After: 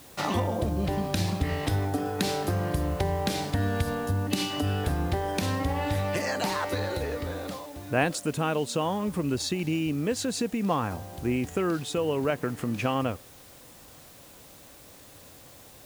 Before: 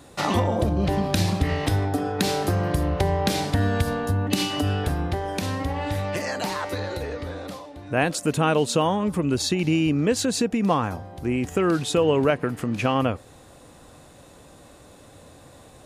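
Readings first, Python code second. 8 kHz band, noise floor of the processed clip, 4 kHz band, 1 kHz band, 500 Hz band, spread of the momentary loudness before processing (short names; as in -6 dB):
-4.5 dB, -50 dBFS, -4.5 dB, -4.5 dB, -5.0 dB, 7 LU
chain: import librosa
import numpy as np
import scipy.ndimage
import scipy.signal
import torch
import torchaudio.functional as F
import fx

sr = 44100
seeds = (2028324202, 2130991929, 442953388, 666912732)

y = fx.rider(x, sr, range_db=4, speed_s=0.5)
y = fx.quant_dither(y, sr, seeds[0], bits=8, dither='triangular')
y = y * librosa.db_to_amplitude(-4.5)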